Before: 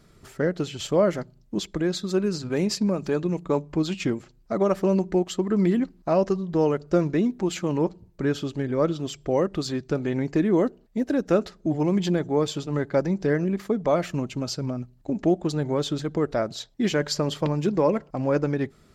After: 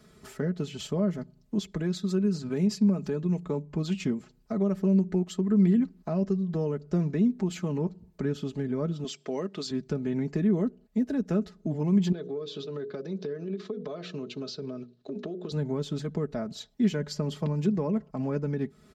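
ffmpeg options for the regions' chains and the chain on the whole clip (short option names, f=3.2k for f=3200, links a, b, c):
-filter_complex "[0:a]asettb=1/sr,asplit=3[a][b][c];[a]atrim=end=9.044[d];[b]atrim=start=9.04:end=9.71,asetpts=PTS-STARTPTS,afade=t=in:d=0.004:c=qsin,afade=t=out:st=0.666:d=0.004:c=qsin,highpass=270,lowpass=5.6k,highshelf=f=2.8k:g=11.5[e];[c]atrim=start=9.706[f];[d][e]acrossfade=d=0.004:c1=hsin:c2=qsin[g];[g][f]acrossfade=d=0.004:c1=qsin:c2=hsin,asettb=1/sr,asplit=3[h][i][j];[h]atrim=end=12.124[k];[i]atrim=start=12.12:end=15.52,asetpts=PTS-STARTPTS,afade=t=in:d=0.004:c=qsin,afade=t=out:st=3.396:d=0.004:c=qsin,highpass=160,equalizer=f=160:t=q:w=4:g=-4,equalizer=f=230:t=q:w=4:g=-7,equalizer=f=410:t=q:w=4:g=7,equalizer=f=860:t=q:w=4:g=-10,equalizer=f=2k:t=q:w=4:g=-7,equalizer=f=3.8k:t=q:w=4:g=9,lowpass=f=5.6k:w=0.5412,lowpass=f=5.6k:w=1.3066,bandreject=f=60:t=h:w=6,bandreject=f=120:t=h:w=6,bandreject=f=180:t=h:w=6,bandreject=f=240:t=h:w=6,bandreject=f=300:t=h:w=6,bandreject=f=360:t=h:w=6,bandreject=f=420:t=h:w=6,bandreject=f=480:t=h:w=6,bandreject=f=540:t=h:w=6,acompressor=threshold=-29dB:ratio=3:attack=3.2:release=140:knee=1:detection=peak[l];[j]atrim=start=15.516[m];[k][l]acrossfade=d=0.004:c1=hsin:c2=qsin[n];[n][m]acrossfade=d=0.004:c1=qsin:c2=hsin,highpass=54,aecho=1:1:4.7:0.59,acrossover=split=280[o][p];[p]acompressor=threshold=-39dB:ratio=2.5[q];[o][q]amix=inputs=2:normalize=0,volume=-1dB"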